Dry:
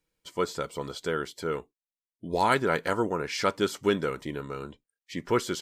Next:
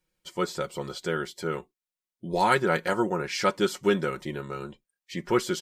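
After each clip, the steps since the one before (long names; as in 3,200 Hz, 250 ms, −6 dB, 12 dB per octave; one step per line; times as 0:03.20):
comb filter 5.5 ms, depth 61%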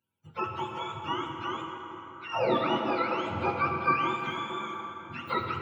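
frequency axis turned over on the octave scale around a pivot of 690 Hz
high-pass filter 500 Hz 6 dB per octave
dense smooth reverb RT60 4.5 s, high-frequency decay 0.5×, DRR 2 dB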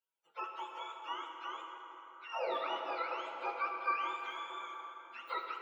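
high-pass filter 470 Hz 24 dB per octave
level −8 dB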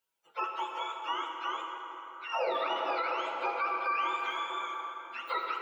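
brickwall limiter −30.5 dBFS, peak gain reduction 8 dB
level +8 dB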